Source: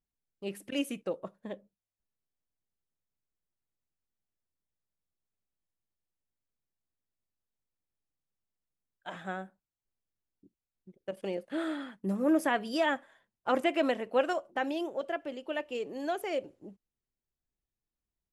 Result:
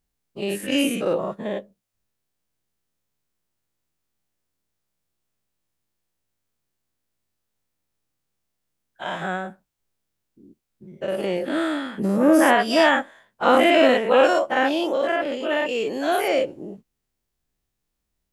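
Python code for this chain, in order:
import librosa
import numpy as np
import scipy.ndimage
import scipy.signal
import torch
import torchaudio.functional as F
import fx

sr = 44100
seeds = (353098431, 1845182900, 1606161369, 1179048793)

y = fx.spec_dilate(x, sr, span_ms=120)
y = y * librosa.db_to_amplitude(7.0)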